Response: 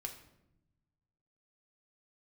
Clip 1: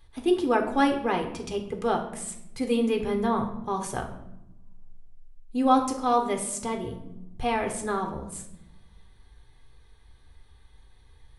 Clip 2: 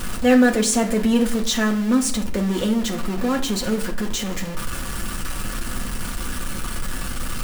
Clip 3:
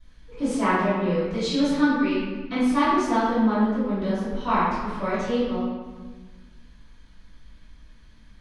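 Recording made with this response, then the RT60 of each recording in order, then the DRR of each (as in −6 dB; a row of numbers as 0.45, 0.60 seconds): 1; 0.85, 0.55, 1.4 seconds; 3.0, 1.0, −18.0 decibels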